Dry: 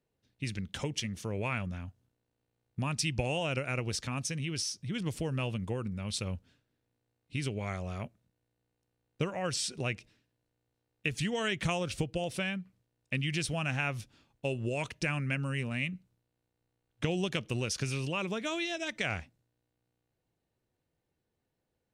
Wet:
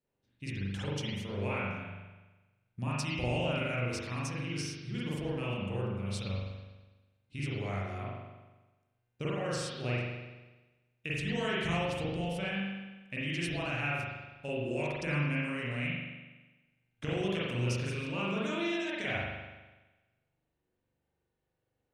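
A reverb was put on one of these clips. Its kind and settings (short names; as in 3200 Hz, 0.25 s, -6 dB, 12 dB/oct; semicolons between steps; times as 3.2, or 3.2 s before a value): spring tank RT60 1.2 s, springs 41 ms, chirp 75 ms, DRR -7.5 dB; gain -8 dB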